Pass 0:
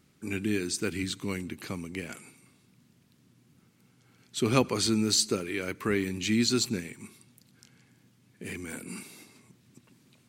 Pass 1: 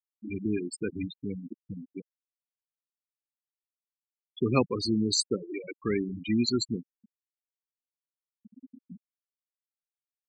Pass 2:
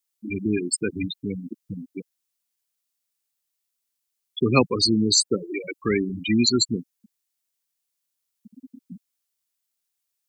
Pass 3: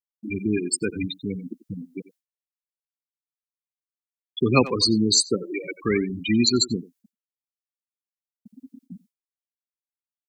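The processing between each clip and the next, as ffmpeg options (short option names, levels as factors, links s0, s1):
-af "afftfilt=real='re*gte(hypot(re,im),0.1)':imag='im*gte(hypot(re,im),0.1)':win_size=1024:overlap=0.75"
-filter_complex "[0:a]highshelf=f=3000:g=12,acrossover=split=270|790|1900[s0][s1][s2][s3];[s3]alimiter=limit=0.211:level=0:latency=1:release=144[s4];[s0][s1][s2][s4]amix=inputs=4:normalize=0,volume=1.88"
-filter_complex "[0:a]asplit=2[s0][s1];[s1]adelay=90,highpass=300,lowpass=3400,asoftclip=type=hard:threshold=0.316,volume=0.178[s2];[s0][s2]amix=inputs=2:normalize=0,agate=range=0.0224:threshold=0.00355:ratio=3:detection=peak"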